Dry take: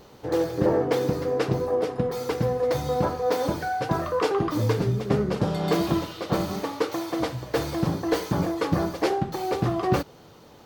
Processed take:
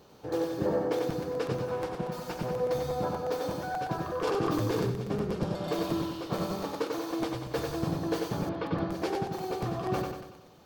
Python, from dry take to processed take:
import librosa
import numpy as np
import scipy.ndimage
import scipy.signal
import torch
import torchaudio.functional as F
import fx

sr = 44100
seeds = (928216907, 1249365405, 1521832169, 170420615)

y = fx.lower_of_two(x, sr, delay_ms=5.6, at=(1.61, 2.51))
y = scipy.signal.sosfilt(scipy.signal.butter(2, 62.0, 'highpass', fs=sr, output='sos'), y)
y = fx.notch(y, sr, hz=2000.0, q=13.0)
y = fx.echo_feedback(y, sr, ms=94, feedback_pct=51, wet_db=-4.0)
y = fx.rider(y, sr, range_db=10, speed_s=2.0)
y = fx.lowpass(y, sr, hz=4000.0, slope=24, at=(8.49, 8.92))
y = fx.buffer_crackle(y, sr, first_s=0.98, period_s=0.12, block=256, kind='repeat')
y = fx.env_flatten(y, sr, amount_pct=100, at=(4.27, 4.9))
y = F.gain(torch.from_numpy(y), -8.5).numpy()